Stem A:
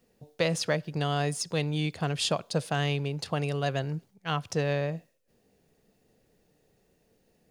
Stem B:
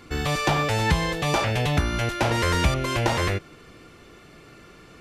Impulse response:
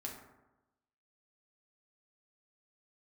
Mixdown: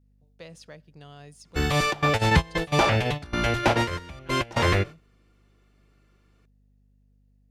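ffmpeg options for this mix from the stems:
-filter_complex "[0:a]adynamicequalizer=threshold=0.0112:dfrequency=830:dqfactor=0.85:tfrequency=830:tqfactor=0.85:attack=5:release=100:ratio=0.375:range=2:mode=cutabove:tftype=bell,aeval=exprs='val(0)+0.00708*(sin(2*PI*50*n/s)+sin(2*PI*2*50*n/s)/2+sin(2*PI*3*50*n/s)/3+sin(2*PI*4*50*n/s)/4+sin(2*PI*5*50*n/s)/5)':channel_layout=same,volume=-17.5dB,asplit=2[link_01][link_02];[1:a]bandreject=frequency=60:width_type=h:width=6,bandreject=frequency=120:width_type=h:width=6,acontrast=30,adynamicequalizer=threshold=0.0126:dfrequency=5600:dqfactor=0.7:tfrequency=5600:tqfactor=0.7:attack=5:release=100:ratio=0.375:range=3.5:mode=cutabove:tftype=highshelf,adelay=1450,volume=-2dB[link_03];[link_02]apad=whole_len=284661[link_04];[link_03][link_04]sidechaingate=range=-23dB:threshold=-47dB:ratio=16:detection=peak[link_05];[link_01][link_05]amix=inputs=2:normalize=0"

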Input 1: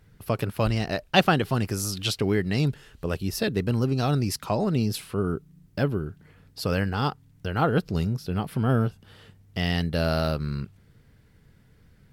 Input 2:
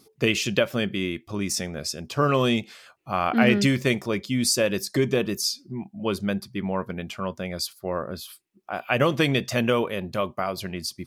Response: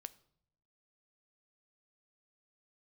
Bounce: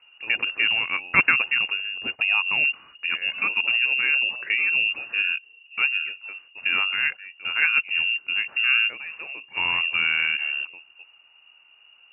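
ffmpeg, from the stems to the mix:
-filter_complex "[0:a]volume=1.5dB[link_01];[1:a]equalizer=frequency=1600:width=1.3:gain=-4,alimiter=limit=-14.5dB:level=0:latency=1:release=65,volume=-12dB,asplit=3[link_02][link_03][link_04];[link_02]atrim=end=1.89,asetpts=PTS-STARTPTS,afade=type=out:start_time=1.886:duration=0.004:curve=hsin[link_05];[link_03]atrim=start=1.89:end=2.52,asetpts=PTS-STARTPTS,volume=0[link_06];[link_04]atrim=start=2.52,asetpts=PTS-STARTPTS,afade=type=in:duration=0.004:curve=hsin[link_07];[link_05][link_06][link_07]concat=n=3:v=0:a=1[link_08];[link_01][link_08]amix=inputs=2:normalize=0,lowpass=frequency=2500:width_type=q:width=0.5098,lowpass=frequency=2500:width_type=q:width=0.6013,lowpass=frequency=2500:width_type=q:width=0.9,lowpass=frequency=2500:width_type=q:width=2.563,afreqshift=-2900,highpass=73"

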